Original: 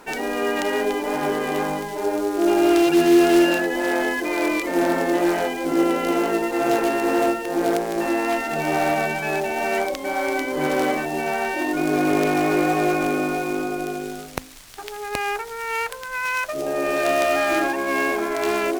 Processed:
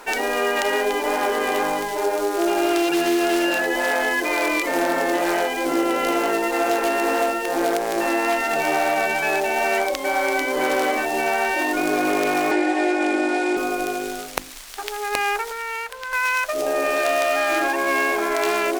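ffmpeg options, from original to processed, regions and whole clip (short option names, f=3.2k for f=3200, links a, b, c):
-filter_complex "[0:a]asettb=1/sr,asplit=3[a][b][c];[a]atrim=end=12.514[d];[b]atrim=start=12.51:end=13.57,asetpts=PTS-STARTPTS,afade=t=in:d=0.004:c=qsin,afade=t=out:st=1.056:d=0.004:c=qsin,highpass=f=300:w=0.5412,highpass=f=300:w=1.3066,equalizer=f=330:t=q:w=4:g=8,equalizer=f=510:t=q:w=4:g=-5,equalizer=f=780:t=q:w=4:g=8,equalizer=f=1.2k:t=q:w=4:g=-10,equalizer=f=1.9k:t=q:w=4:g=5,equalizer=f=6.2k:t=q:w=4:g=-5,lowpass=f=8.5k:w=0.5412,lowpass=f=8.5k:w=1.3066,aecho=1:1:3.4:0.56,atrim=end_sample=46746[e];[c]atrim=start=13.566[f];[d][e]acrossfade=d=0.004:c1=hsin:c2=qsin[g];[g][f]acrossfade=d=0.004:c1=qsin:c2=hsin,asettb=1/sr,asplit=3[h][i][j];[h]atrim=end=15.514[k];[i]atrim=start=15.51:end=16.13,asetpts=PTS-STARTPTS,afade=t=in:d=0.004:c=qsin,afade=t=out:st=0.616:d=0.004:c=qsin,acrossover=split=1500|4600[l][m][n];[l]acompressor=threshold=-37dB:ratio=4[o];[m]acompressor=threshold=-37dB:ratio=4[p];[n]acompressor=threshold=-50dB:ratio=4[q];[o][p][q]amix=inputs=3:normalize=0,aeval=exprs='val(0)+0.001*(sin(2*PI*60*n/s)+sin(2*PI*2*60*n/s)/2+sin(2*PI*3*60*n/s)/3+sin(2*PI*4*60*n/s)/4+sin(2*PI*5*60*n/s)/5)':c=same[r];[j]atrim=start=16.126[s];[k][r]acrossfade=d=0.004:c1=hsin:c2=qsin[t];[t][s]acrossfade=d=0.004:c1=qsin:c2=hsin,equalizer=f=110:w=0.58:g=-15,bandreject=f=50:t=h:w=6,bandreject=f=100:t=h:w=6,bandreject=f=150:t=h:w=6,bandreject=f=200:t=h:w=6,bandreject=f=250:t=h:w=6,bandreject=f=300:t=h:w=6,bandreject=f=350:t=h:w=6,acompressor=threshold=-23dB:ratio=6,volume=6dB"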